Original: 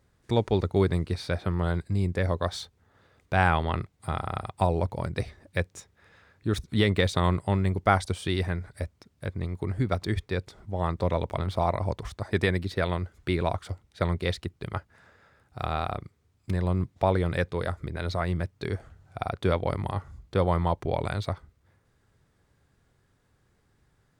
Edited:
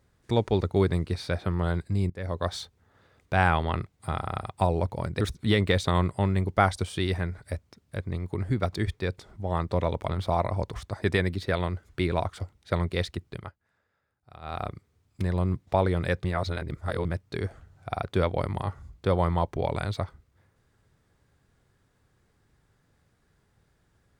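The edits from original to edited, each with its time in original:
0:02.10–0:02.47: fade in, from −20.5 dB
0:05.21–0:06.50: remove
0:14.59–0:15.93: duck −17 dB, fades 0.23 s
0:17.53–0:18.34: reverse

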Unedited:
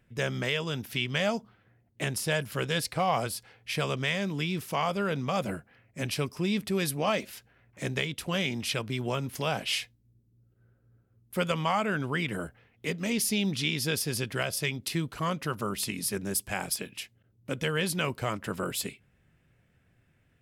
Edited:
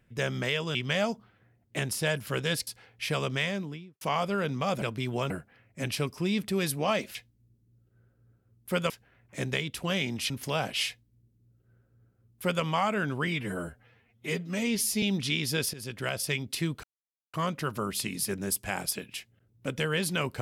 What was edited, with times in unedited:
0:00.75–0:01.00: remove
0:02.92–0:03.34: remove
0:04.07–0:04.68: fade out and dull
0:08.74–0:09.22: move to 0:05.49
0:09.80–0:11.55: duplicate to 0:07.34
0:12.19–0:13.36: time-stretch 1.5×
0:14.07–0:14.64: fade in equal-power, from −16 dB
0:15.17: splice in silence 0.50 s

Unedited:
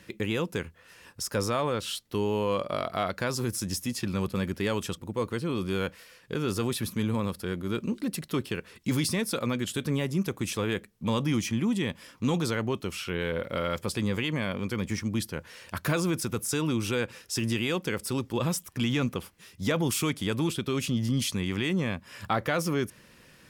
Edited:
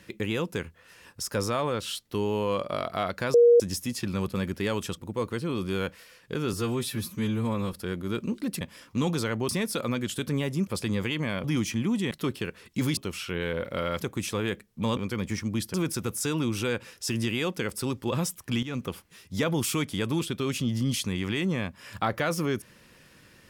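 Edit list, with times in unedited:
0:03.34–0:03.60: beep over 475 Hz −13 dBFS
0:06.53–0:07.33: time-stretch 1.5×
0:08.21–0:09.07: swap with 0:11.88–0:12.76
0:10.25–0:11.21: swap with 0:13.80–0:14.57
0:15.34–0:16.02: remove
0:18.91–0:19.18: fade in, from −14 dB

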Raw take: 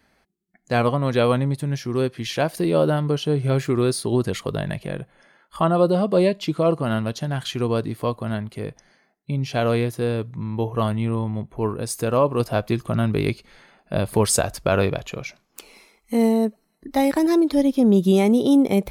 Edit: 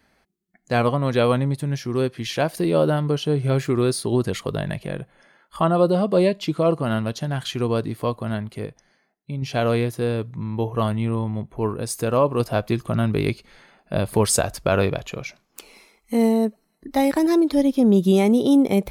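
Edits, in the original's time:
0:08.66–0:09.42: clip gain −4.5 dB

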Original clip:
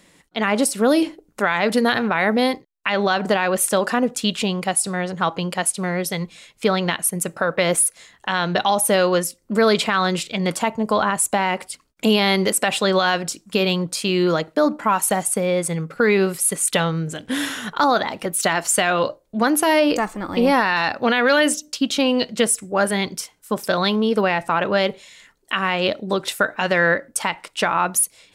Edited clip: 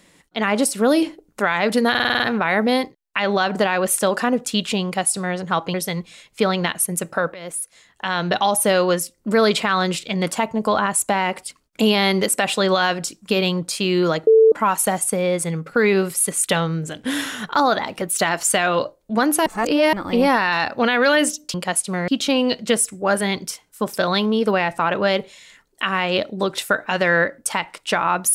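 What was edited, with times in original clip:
0:01.90: stutter 0.05 s, 7 plays
0:05.44–0:05.98: move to 0:21.78
0:07.58–0:08.51: fade in, from −21 dB
0:14.51–0:14.76: beep over 444 Hz −8 dBFS
0:19.70–0:20.17: reverse

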